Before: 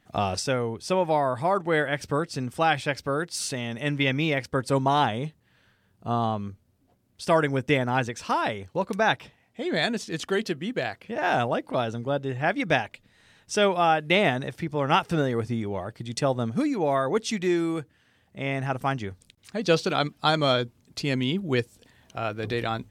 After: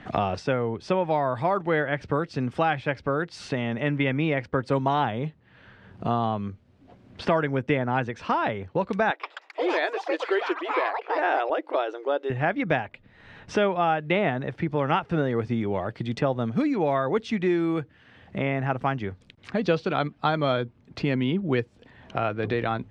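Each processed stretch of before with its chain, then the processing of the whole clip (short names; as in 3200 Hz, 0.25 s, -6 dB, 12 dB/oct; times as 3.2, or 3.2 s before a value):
9.1–12.3 brick-wall FIR high-pass 290 Hz + echoes that change speed 0.133 s, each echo +6 st, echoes 3, each echo -6 dB
whole clip: LPF 2500 Hz 12 dB/oct; three-band squash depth 70%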